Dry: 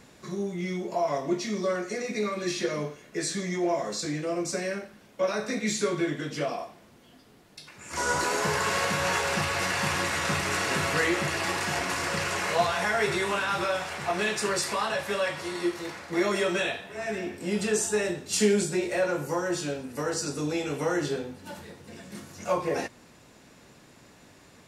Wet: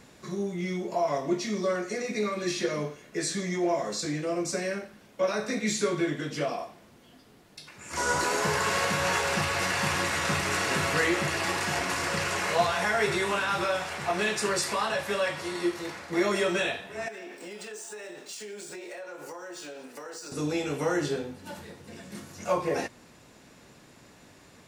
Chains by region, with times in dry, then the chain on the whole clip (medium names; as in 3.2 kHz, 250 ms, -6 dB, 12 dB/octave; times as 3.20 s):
17.08–20.32 s: median filter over 3 samples + high-pass 410 Hz + compression 12:1, threshold -37 dBFS
whole clip: none